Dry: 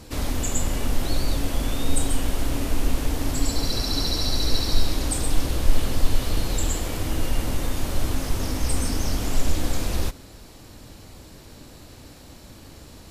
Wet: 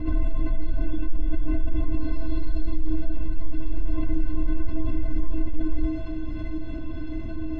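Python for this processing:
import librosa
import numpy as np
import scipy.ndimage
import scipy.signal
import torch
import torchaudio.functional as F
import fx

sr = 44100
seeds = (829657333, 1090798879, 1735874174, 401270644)

p1 = fx.tube_stage(x, sr, drive_db=26.0, bias=0.3)
p2 = scipy.signal.sosfilt(scipy.signal.butter(4, 2900.0, 'lowpass', fs=sr, output='sos'), p1)
p3 = fx.low_shelf(p2, sr, hz=230.0, db=11.5)
p4 = fx.stretch_vocoder_free(p3, sr, factor=0.58)
p5 = 10.0 ** (-18.5 / 20.0) * (np.abs((p4 / 10.0 ** (-18.5 / 20.0) + 3.0) % 4.0 - 2.0) - 1.0)
p6 = fx.low_shelf(p5, sr, hz=460.0, db=11.5)
p7 = fx.stiff_resonator(p6, sr, f0_hz=310.0, decay_s=0.41, stiffness=0.03)
p8 = p7 + fx.echo_wet_highpass(p7, sr, ms=682, feedback_pct=73, hz=1800.0, wet_db=-12.0, dry=0)
p9 = fx.env_flatten(p8, sr, amount_pct=50)
y = F.gain(torch.from_numpy(p9), 6.0).numpy()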